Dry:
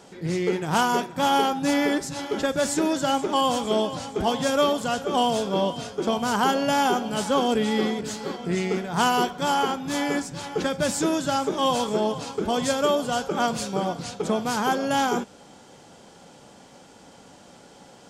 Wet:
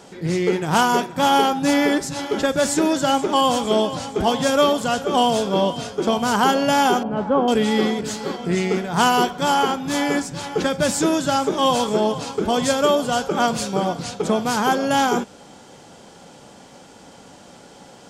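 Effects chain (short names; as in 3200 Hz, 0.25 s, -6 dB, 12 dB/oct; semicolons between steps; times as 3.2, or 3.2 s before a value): 7.03–7.48 LPF 1200 Hz 12 dB/oct; gain +4.5 dB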